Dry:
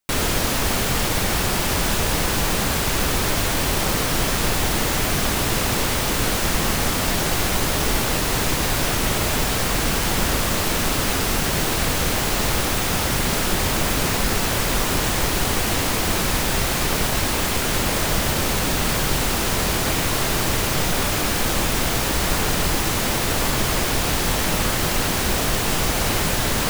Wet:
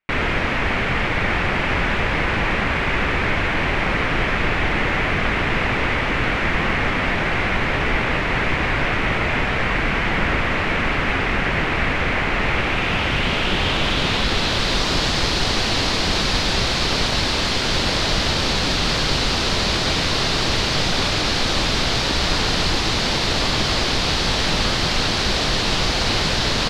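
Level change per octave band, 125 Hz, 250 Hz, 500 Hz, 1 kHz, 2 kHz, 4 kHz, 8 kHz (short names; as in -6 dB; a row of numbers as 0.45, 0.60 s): +0.5, +0.5, +0.5, +1.5, +5.0, +3.5, -8.0 dB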